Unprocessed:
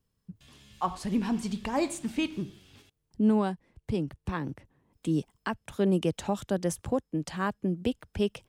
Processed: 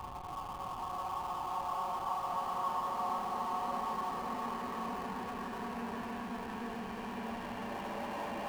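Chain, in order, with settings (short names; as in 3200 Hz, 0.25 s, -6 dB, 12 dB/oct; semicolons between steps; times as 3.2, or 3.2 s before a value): on a send: thin delay 91 ms, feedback 82%, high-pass 1900 Hz, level -5.5 dB; on the sum: treble ducked by the level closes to 1600 Hz, closed at -22.5 dBFS; three-band isolator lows -21 dB, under 450 Hz, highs -17 dB, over 2800 Hz; Paulstretch 8.3×, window 1.00 s, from 0.53; in parallel at -9 dB: Schmitt trigger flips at -40 dBFS; on the sum: gain -2 dB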